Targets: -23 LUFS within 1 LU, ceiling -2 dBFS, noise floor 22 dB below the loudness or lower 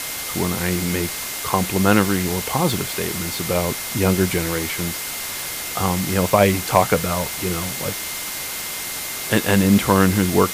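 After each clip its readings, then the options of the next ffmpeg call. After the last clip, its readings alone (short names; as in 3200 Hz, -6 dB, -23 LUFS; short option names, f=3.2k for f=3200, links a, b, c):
steady tone 2100 Hz; tone level -37 dBFS; noise floor -29 dBFS; noise floor target -43 dBFS; loudness -20.5 LUFS; peak -2.0 dBFS; loudness target -23.0 LUFS
-> -af "bandreject=f=2.1k:w=30"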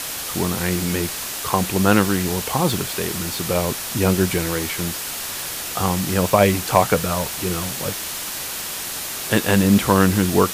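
steady tone none; noise floor -29 dBFS; noise floor target -43 dBFS
-> -af "afftdn=nr=14:nf=-29"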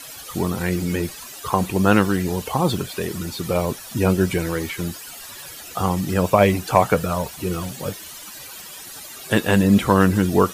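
noise floor -38 dBFS; noise floor target -43 dBFS
-> -af "afftdn=nr=6:nf=-38"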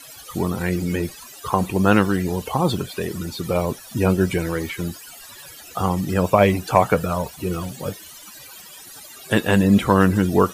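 noise floor -42 dBFS; noise floor target -43 dBFS
-> -af "afftdn=nr=6:nf=-42"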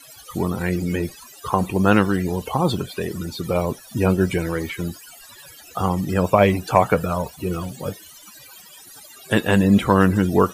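noise floor -45 dBFS; loudness -21.0 LUFS; peak -2.0 dBFS; loudness target -23.0 LUFS
-> -af "volume=-2dB"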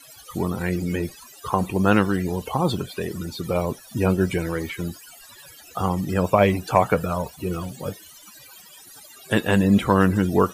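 loudness -23.0 LUFS; peak -4.0 dBFS; noise floor -47 dBFS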